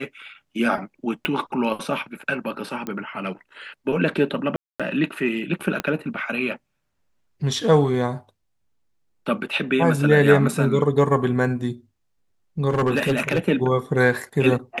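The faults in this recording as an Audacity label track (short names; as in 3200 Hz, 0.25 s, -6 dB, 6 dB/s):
1.250000	1.250000	pop -10 dBFS
2.870000	2.870000	pop -16 dBFS
4.560000	4.800000	gap 0.236 s
5.800000	5.800000	pop -9 dBFS
12.690000	13.390000	clipped -15 dBFS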